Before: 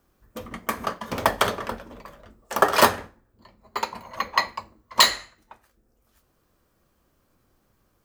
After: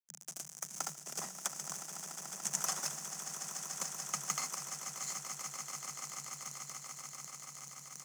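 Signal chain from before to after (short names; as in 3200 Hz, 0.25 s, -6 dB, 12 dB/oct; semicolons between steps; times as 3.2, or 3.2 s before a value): zero-crossing step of -26 dBFS; HPF 63 Hz 12 dB/oct; high shelf 3100 Hz +10 dB; sample gate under -17.5 dBFS; compressor, threshold -25 dBFS, peak gain reduction 19 dB; grains, pitch spread up and down by 0 st; swelling echo 0.145 s, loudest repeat 8, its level -12 dB; frequency shift +140 Hz; EQ curve 120 Hz 0 dB, 280 Hz -24 dB, 810 Hz -20 dB, 4200 Hz -28 dB, 6200 Hz -6 dB, 14000 Hz -24 dB; gain +11 dB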